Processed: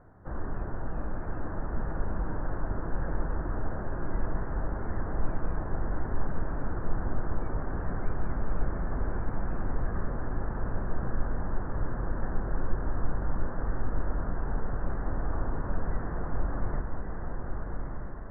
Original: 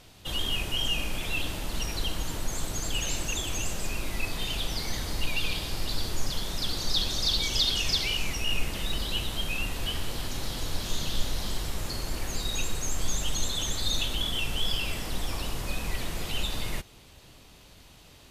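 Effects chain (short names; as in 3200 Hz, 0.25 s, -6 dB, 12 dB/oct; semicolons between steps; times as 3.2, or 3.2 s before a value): steep low-pass 1700 Hz 72 dB/oct; diffused feedback echo 1.204 s, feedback 44%, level -3 dB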